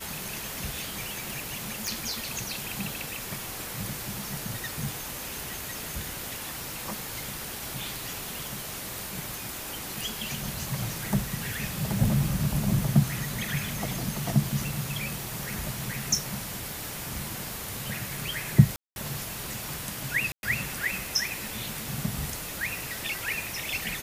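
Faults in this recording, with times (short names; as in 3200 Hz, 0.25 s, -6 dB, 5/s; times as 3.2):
1.87 pop
18.76–18.96 gap 0.201 s
20.32–20.43 gap 0.111 s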